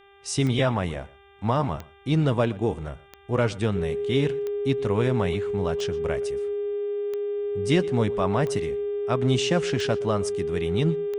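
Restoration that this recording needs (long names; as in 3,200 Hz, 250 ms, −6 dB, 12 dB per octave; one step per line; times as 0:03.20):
click removal
hum removal 397.3 Hz, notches 9
notch filter 410 Hz, Q 30
echo removal 120 ms −21.5 dB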